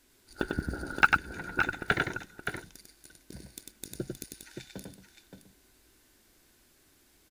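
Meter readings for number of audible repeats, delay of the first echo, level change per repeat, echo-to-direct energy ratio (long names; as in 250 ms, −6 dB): 2, 98 ms, repeats not evenly spaced, −2.0 dB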